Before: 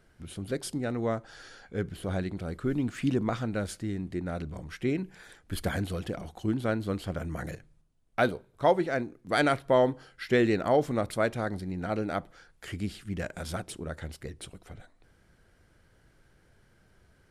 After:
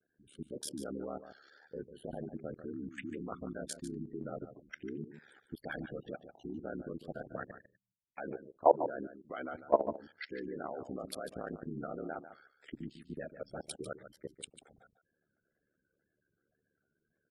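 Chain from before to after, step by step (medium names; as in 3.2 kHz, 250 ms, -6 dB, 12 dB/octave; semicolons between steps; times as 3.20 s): spectral gate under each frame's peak -15 dB strong; high-pass 260 Hz 12 dB/octave; time-frequency box 12.82–13.63 s, 630–1700 Hz -7 dB; level held to a coarse grid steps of 21 dB; ring modulator 36 Hz; vibrato 2 Hz 83 cents; on a send: delay 147 ms -11.5 dB; on the sum: trim +4 dB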